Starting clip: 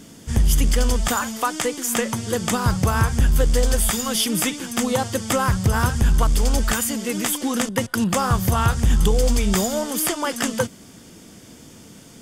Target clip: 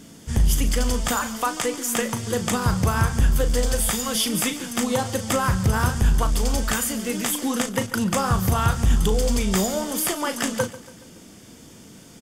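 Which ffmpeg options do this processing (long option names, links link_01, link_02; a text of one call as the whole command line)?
ffmpeg -i in.wav -filter_complex "[0:a]asplit=2[link_01][link_02];[link_02]adelay=37,volume=-10dB[link_03];[link_01][link_03]amix=inputs=2:normalize=0,asplit=2[link_04][link_05];[link_05]aecho=0:1:141|282|423|564:0.133|0.0693|0.0361|0.0188[link_06];[link_04][link_06]amix=inputs=2:normalize=0,volume=-2dB" out.wav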